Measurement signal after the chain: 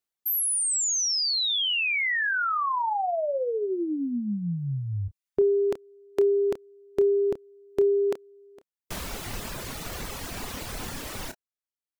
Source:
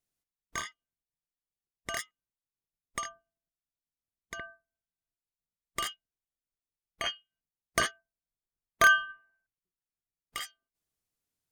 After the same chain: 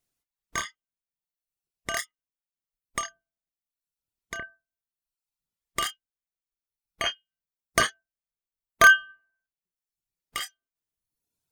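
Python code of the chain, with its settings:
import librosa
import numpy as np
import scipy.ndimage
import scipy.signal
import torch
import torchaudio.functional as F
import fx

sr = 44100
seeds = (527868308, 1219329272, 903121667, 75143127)

y = fx.dereverb_blind(x, sr, rt60_s=1.0)
y = fx.doubler(y, sr, ms=29.0, db=-12.0)
y = F.gain(torch.from_numpy(y), 5.5).numpy()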